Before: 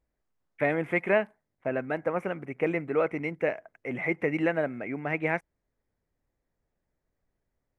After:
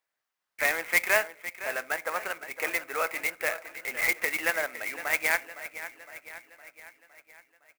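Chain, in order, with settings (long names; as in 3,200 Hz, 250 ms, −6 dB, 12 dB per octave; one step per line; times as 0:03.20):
high-pass filter 1,200 Hz 12 dB per octave
repeating echo 511 ms, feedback 56%, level −13.5 dB
convolution reverb RT60 0.50 s, pre-delay 8 ms, DRR 17 dB
converter with an unsteady clock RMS 0.03 ms
level +7 dB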